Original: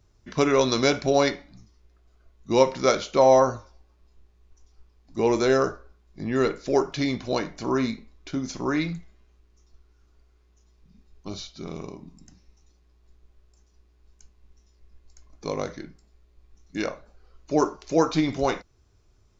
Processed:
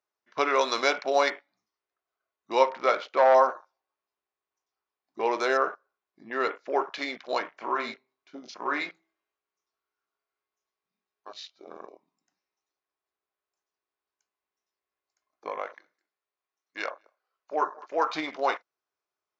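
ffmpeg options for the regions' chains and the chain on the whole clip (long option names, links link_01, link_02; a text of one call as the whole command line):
ffmpeg -i in.wav -filter_complex "[0:a]asettb=1/sr,asplit=3[link_01][link_02][link_03];[link_01]atrim=end=2.704[link_04];[link_02]atrim=start=2.7:end=3.35,asetpts=PTS-STARTPTS,afade=type=in:duration=0.004:curve=qsin,afade=type=out:start_time=0.646:duration=0.004:curve=qsin,lowpass=frequency=2700:poles=1,aeval=exprs='clip(val(0),-1,0.2)':channel_layout=same[link_05];[link_03]atrim=start=3.346[link_06];[link_04][link_05]acrossfade=duration=0.004:curve1=hsin:curve2=qsin[link_07];[link_07][link_06]acrossfade=duration=0.004:curve1=qsin:curve2=hsin,asettb=1/sr,asplit=3[link_08][link_09][link_10];[link_08]atrim=end=7.494[link_11];[link_09]atrim=start=7.49:end=11.46,asetpts=PTS-STARTPTS,afade=type=in:duration=0.004:curve=qsin,afade=type=out:start_time=3.966:duration=0.004:curve=qsin,asplit=2[link_12][link_13];[link_13]adelay=21,volume=-7dB[link_14];[link_12][link_14]amix=inputs=2:normalize=0,atrim=end_sample=175077,bandreject=frequency=65.14:width_type=h:width=4,bandreject=frequency=130.28:width_type=h:width=4,bandreject=frequency=195.42:width_type=h:width=4,bandreject=frequency=260.56:width_type=h:width=4,bandreject=frequency=325.7:width_type=h:width=4,bandreject=frequency=390.84:width_type=h:width=4,bandreject=frequency=455.98:width_type=h:width=4,bandreject=frequency=521.12:width_type=h:width=4,bandreject=frequency=586.26:width_type=h:width=4,bandreject=frequency=651.4:width_type=h:width=4,bandreject=frequency=716.54:width_type=h:width=4,bandreject=frequency=781.68:width_type=h:width=4,bandreject=frequency=846.82:width_type=h:width=4,bandreject=frequency=911.96:width_type=h:width=4,bandreject=frequency=977.1:width_type=h:width=4[link_15];[link_10]atrim=start=11.456[link_16];[link_11][link_15]acrossfade=duration=0.004:curve1=hsin:curve2=qsin[link_17];[link_17][link_16]acrossfade=duration=0.004:curve1=qsin:curve2=hsin,asettb=1/sr,asplit=3[link_18][link_19][link_20];[link_18]atrim=end=15.494[link_21];[link_19]atrim=start=15.49:end=18.13,asetpts=PTS-STARTPTS,afade=type=in:duration=0.004:curve=qsin,afade=type=out:start_time=2.636:duration=0.004:curve=qsin,lowshelf=frequency=290:gain=-11.5,aecho=1:1:207:0.1,atrim=end_sample=116424[link_22];[link_20]atrim=start=18.126[link_23];[link_21][link_22]acrossfade=duration=0.004:curve1=hsin:curve2=qsin[link_24];[link_24][link_23]acrossfade=duration=0.004:curve1=qsin:curve2=hsin,highpass=840,afwtdn=0.00708,lowpass=frequency=1600:poles=1,volume=5.5dB" out.wav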